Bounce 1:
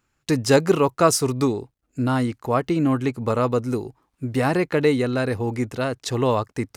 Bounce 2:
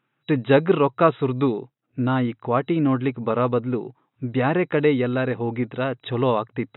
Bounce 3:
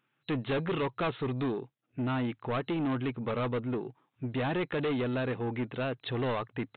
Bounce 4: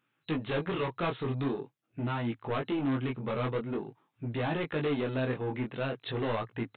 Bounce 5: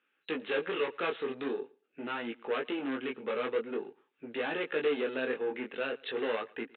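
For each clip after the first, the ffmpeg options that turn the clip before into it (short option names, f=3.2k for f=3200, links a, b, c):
-af "afftfilt=real='re*between(b*sr/4096,110,3900)':imag='im*between(b*sr/4096,110,3900)':win_size=4096:overlap=0.75"
-af "highshelf=f=3k:g=9,aresample=8000,asoftclip=type=tanh:threshold=-22dB,aresample=44100,volume=-5dB"
-af "flanger=delay=17.5:depth=6:speed=0.46,volume=2.5dB"
-af "highpass=f=270:w=0.5412,highpass=f=270:w=1.3066,equalizer=f=310:t=q:w=4:g=-5,equalizer=f=460:t=q:w=4:g=5,equalizer=f=670:t=q:w=4:g=-6,equalizer=f=1k:t=q:w=4:g=-6,equalizer=f=1.6k:t=q:w=4:g=4,equalizer=f=2.7k:t=q:w=4:g=4,lowpass=f=3.9k:w=0.5412,lowpass=f=3.9k:w=1.3066,aecho=1:1:113|226:0.0631|0.0101"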